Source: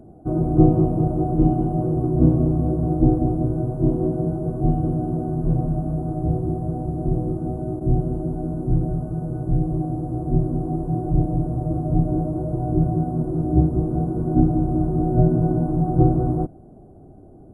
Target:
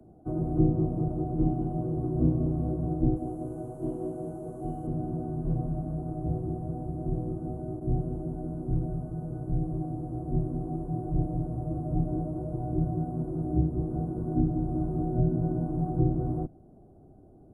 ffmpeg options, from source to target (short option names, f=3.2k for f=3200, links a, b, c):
-filter_complex "[0:a]asettb=1/sr,asplit=3[a][b][c];[a]atrim=end=3.164[d];[b]atrim=start=3.16:end=4.87,asetpts=PTS-STARTPTS,afade=t=in:d=0.004:c=qsin,afade=t=out:st=1.706:d=0.004:c=qsin,bass=f=250:g=-10,treble=f=4k:g=9[e];[c]atrim=start=4.866[f];[d][e]acrossfade=d=0.004:c1=hsin:c2=qsin[g];[g][f]acrossfade=d=0.004:c1=qsin:c2=hsin,acrossover=split=130|220|420[h][i][j][k];[k]alimiter=level_in=0.5dB:limit=-24dB:level=0:latency=1:release=386,volume=-0.5dB[l];[h][i][j][l]amix=inputs=4:normalize=0,volume=-8.5dB"